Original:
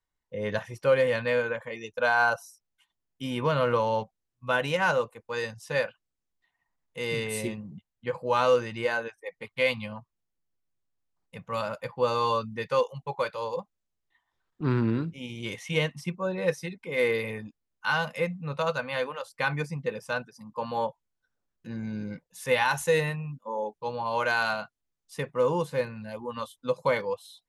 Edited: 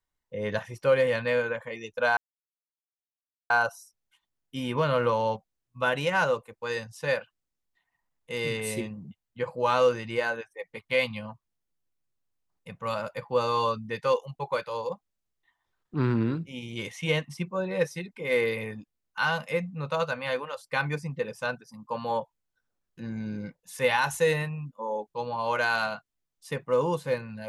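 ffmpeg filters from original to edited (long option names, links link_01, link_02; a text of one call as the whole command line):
ffmpeg -i in.wav -filter_complex "[0:a]asplit=2[link_01][link_02];[link_01]atrim=end=2.17,asetpts=PTS-STARTPTS,afade=type=out:start_time=2.166:duration=0.004:curve=hsin,apad=pad_dur=1.33[link_03];[link_02]atrim=start=2.17,asetpts=PTS-STARTPTS,afade=type=in:duration=0.004:curve=hsin[link_04];[link_03][link_04]concat=n=2:v=0:a=1" out.wav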